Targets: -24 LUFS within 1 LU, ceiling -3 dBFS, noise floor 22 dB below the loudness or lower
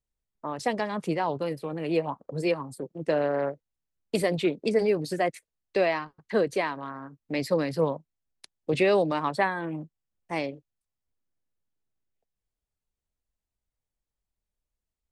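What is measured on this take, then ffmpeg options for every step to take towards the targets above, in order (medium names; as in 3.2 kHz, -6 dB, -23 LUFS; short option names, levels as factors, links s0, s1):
loudness -28.5 LUFS; peak level -11.5 dBFS; loudness target -24.0 LUFS
-> -af "volume=1.68"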